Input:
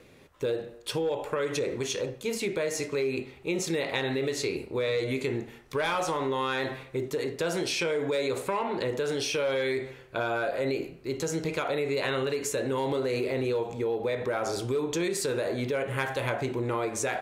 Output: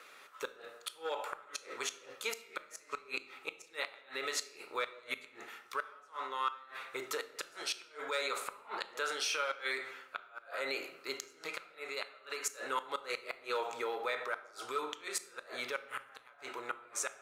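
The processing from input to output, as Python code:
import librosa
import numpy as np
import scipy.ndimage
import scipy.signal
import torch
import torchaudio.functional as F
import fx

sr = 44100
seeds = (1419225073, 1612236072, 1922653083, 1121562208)

y = scipy.signal.sosfilt(scipy.signal.butter(2, 900.0, 'highpass', fs=sr, output='sos'), x)
y = fx.peak_eq(y, sr, hz=1300.0, db=13.5, octaves=0.31)
y = fx.rider(y, sr, range_db=5, speed_s=0.5)
y = fx.gate_flip(y, sr, shuts_db=-21.0, range_db=-29)
y = fx.room_shoebox(y, sr, seeds[0], volume_m3=370.0, walls='mixed', distance_m=0.32)
y = y * librosa.db_to_amplitude(-2.0)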